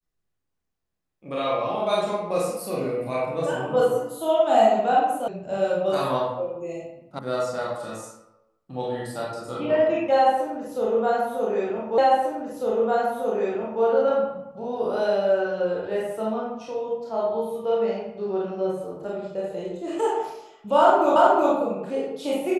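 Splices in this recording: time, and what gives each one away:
0:05.28: cut off before it has died away
0:07.19: cut off before it has died away
0:11.98: the same again, the last 1.85 s
0:21.16: the same again, the last 0.37 s

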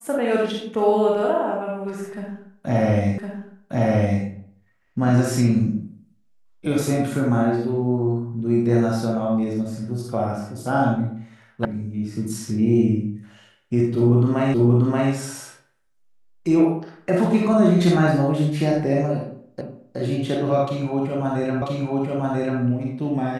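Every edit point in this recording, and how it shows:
0:03.18: the same again, the last 1.06 s
0:11.65: cut off before it has died away
0:14.54: the same again, the last 0.58 s
0:19.61: the same again, the last 0.37 s
0:21.62: the same again, the last 0.99 s

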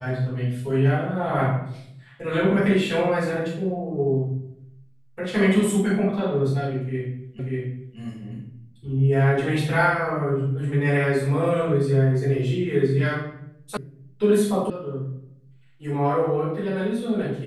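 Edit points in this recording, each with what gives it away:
0:07.39: the same again, the last 0.59 s
0:13.77: cut off before it has died away
0:14.70: cut off before it has died away

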